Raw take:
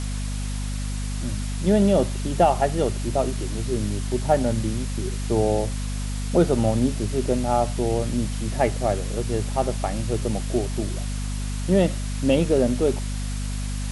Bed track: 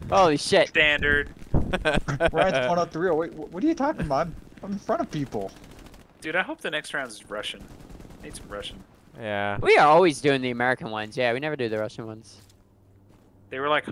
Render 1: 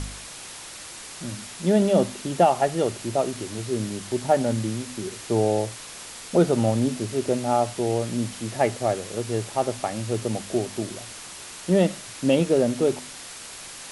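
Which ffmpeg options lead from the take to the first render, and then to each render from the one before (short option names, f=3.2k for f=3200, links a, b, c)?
-af "bandreject=f=50:t=h:w=4,bandreject=f=100:t=h:w=4,bandreject=f=150:t=h:w=4,bandreject=f=200:t=h:w=4,bandreject=f=250:t=h:w=4"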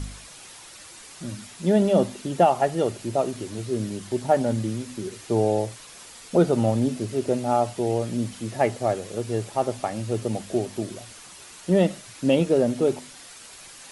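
-af "afftdn=nr=7:nf=-40"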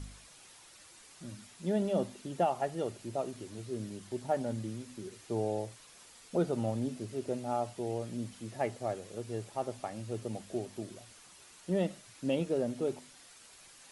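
-af "volume=-11.5dB"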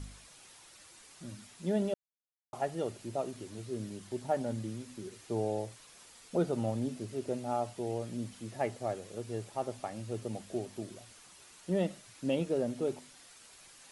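-filter_complex "[0:a]asplit=3[a][b][c];[a]atrim=end=1.94,asetpts=PTS-STARTPTS,afade=t=out:st=1.936:d=0.004:c=hsin[d];[b]atrim=start=1.94:end=2.53,asetpts=PTS-STARTPTS,volume=0[e];[c]atrim=start=2.53,asetpts=PTS-STARTPTS,afade=t=in:d=0.004:c=hsin[f];[d][e][f]concat=n=3:v=0:a=1"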